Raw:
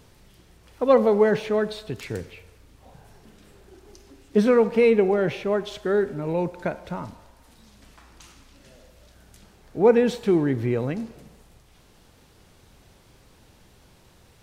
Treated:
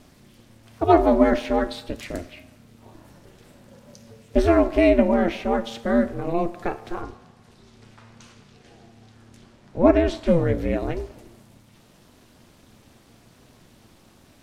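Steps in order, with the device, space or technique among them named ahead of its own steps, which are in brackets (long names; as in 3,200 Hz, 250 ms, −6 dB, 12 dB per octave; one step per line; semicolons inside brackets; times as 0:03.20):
alien voice (ring modulation 170 Hz; flanger 0.82 Hz, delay 8 ms, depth 1.2 ms, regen +78%)
0:07.02–0:10.27: high-frequency loss of the air 52 metres
level +8.5 dB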